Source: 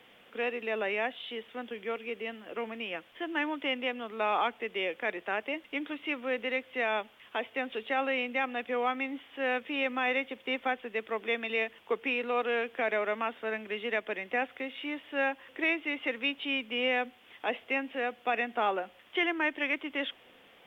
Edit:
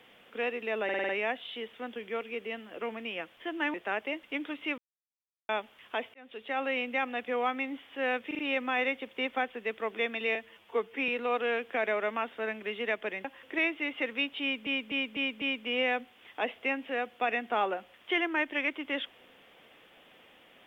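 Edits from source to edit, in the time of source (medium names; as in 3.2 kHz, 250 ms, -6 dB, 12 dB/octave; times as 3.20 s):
0.84 s: stutter 0.05 s, 6 plays
3.49–5.15 s: delete
6.19–6.90 s: mute
7.55–8.34 s: fade in equal-power
9.68 s: stutter 0.04 s, 4 plays
11.64–12.13 s: stretch 1.5×
14.29–15.30 s: delete
16.47–16.72 s: loop, 5 plays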